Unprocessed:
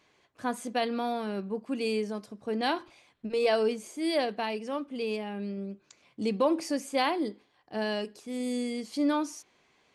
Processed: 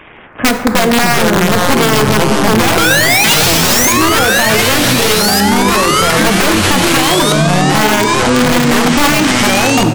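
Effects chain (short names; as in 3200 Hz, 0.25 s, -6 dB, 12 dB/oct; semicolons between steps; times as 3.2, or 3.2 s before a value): CVSD 16 kbps; spectral gate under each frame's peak -25 dB strong; compressor 8:1, threshold -29 dBFS, peak gain reduction 8.5 dB; painted sound rise, 2.77–3.93, 430–2300 Hz -28 dBFS; echo 0.56 s -22 dB; wrapped overs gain 27.5 dB; plate-style reverb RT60 1.1 s, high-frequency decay 0.45×, DRR 8 dB; echoes that change speed 0.166 s, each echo -5 st, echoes 3; maximiser +28 dB; gain -1 dB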